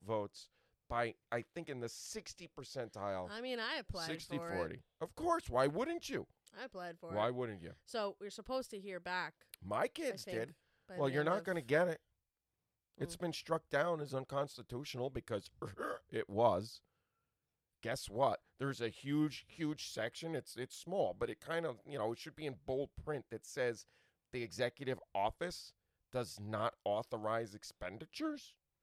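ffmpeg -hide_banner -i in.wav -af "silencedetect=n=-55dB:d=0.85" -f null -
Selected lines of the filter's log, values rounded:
silence_start: 11.96
silence_end: 12.95 | silence_duration: 0.98
silence_start: 16.78
silence_end: 17.83 | silence_duration: 1.05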